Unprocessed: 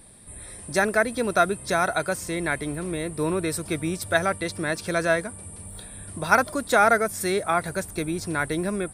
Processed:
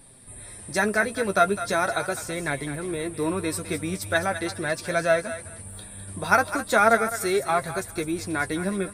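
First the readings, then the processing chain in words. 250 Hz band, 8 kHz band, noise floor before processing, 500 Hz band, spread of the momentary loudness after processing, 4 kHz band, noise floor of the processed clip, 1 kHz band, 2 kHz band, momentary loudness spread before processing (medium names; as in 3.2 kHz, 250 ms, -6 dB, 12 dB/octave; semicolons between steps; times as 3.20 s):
-1.0 dB, -0.5 dB, -42 dBFS, 0.0 dB, 15 LU, -0.5 dB, -43 dBFS, -0.5 dB, 0.0 dB, 17 LU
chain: flange 0.4 Hz, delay 7.2 ms, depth 3.4 ms, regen +32%; thinning echo 207 ms, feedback 25%, high-pass 840 Hz, level -10 dB; trim +3 dB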